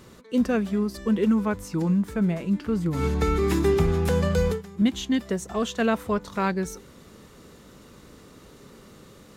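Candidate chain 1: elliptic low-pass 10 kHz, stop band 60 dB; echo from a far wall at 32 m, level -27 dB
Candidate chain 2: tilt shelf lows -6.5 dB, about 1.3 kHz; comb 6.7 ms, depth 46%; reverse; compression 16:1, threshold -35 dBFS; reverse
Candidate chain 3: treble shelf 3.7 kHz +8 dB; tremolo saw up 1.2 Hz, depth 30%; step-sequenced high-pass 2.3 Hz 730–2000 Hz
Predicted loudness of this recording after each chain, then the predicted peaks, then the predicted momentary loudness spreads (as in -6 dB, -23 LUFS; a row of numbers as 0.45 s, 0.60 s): -26.0 LUFS, -40.0 LUFS, -28.5 LUFS; -11.0 dBFS, -24.5 dBFS, -7.5 dBFS; 6 LU, 10 LU, 23 LU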